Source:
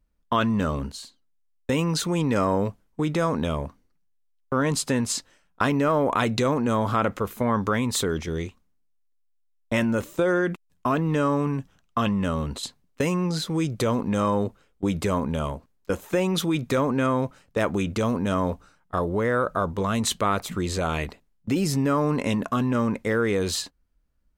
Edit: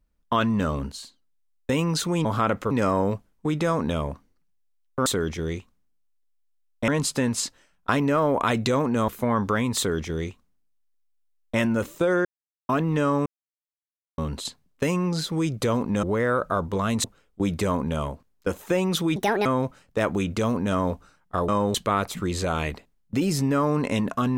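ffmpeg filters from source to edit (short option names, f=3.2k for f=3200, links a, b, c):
-filter_complex "[0:a]asplit=16[a][b][c][d][e][f][g][h][i][j][k][l][m][n][o][p];[a]atrim=end=2.252[q];[b]atrim=start=6.798:end=7.262[r];[c]atrim=start=2.248:end=4.602[s];[d]atrim=start=7.948:end=9.772[t];[e]atrim=start=4.598:end=6.802[u];[f]atrim=start=7.258:end=10.43,asetpts=PTS-STARTPTS,afade=t=out:st=3.168:d=0.004:c=hsin[v];[g]atrim=start=10.43:end=10.87,asetpts=PTS-STARTPTS,volume=0[w];[h]atrim=start=10.87:end=11.44,asetpts=PTS-STARTPTS,afade=t=in:d=0.004:c=hsin,afade=t=out:st=0.566:d=0.004:c=hsin[x];[i]atrim=start=11.44:end=12.36,asetpts=PTS-STARTPTS,volume=0[y];[j]atrim=start=12.36:end=14.212,asetpts=PTS-STARTPTS,afade=t=in:d=0.004:c=hsin[z];[k]atrim=start=19.078:end=20.092[aa];[l]atrim=start=14.468:end=16.594[ab];[m]atrim=start=16.59:end=17.05,asetpts=PTS-STARTPTS,asetrate=68796,aresample=44100[ac];[n]atrim=start=17.046:end=19.082[ad];[o]atrim=start=14.208:end=14.472[ae];[p]atrim=start=20.088[af];[q][r]acrossfade=d=0.004:c1=hsin:c2=hsin[ag];[ag][s]acrossfade=d=0.004:c1=hsin:c2=hsin[ah];[ah][t]acrossfade=d=0.004:c1=hsin:c2=hsin[ai];[ai][u]acrossfade=d=0.004:c1=hsin:c2=hsin[aj];[v][w][x][y][z]concat=n=5:v=0:a=1[ak];[aj][ak]acrossfade=d=0.004:c1=hsin:c2=hsin[al];[al][aa]acrossfade=d=0.004:c1=hsin:c2=hsin[am];[am][ab]acrossfade=d=0.004:c1=hsin:c2=hsin[an];[an][ac]acrossfade=d=0.004:c1=hsin:c2=hsin[ao];[ao][ad]acrossfade=d=0.004:c1=hsin:c2=hsin[ap];[ap][ae]acrossfade=d=0.004:c1=hsin:c2=hsin[aq];[aq][af]acrossfade=d=0.004:c1=hsin:c2=hsin"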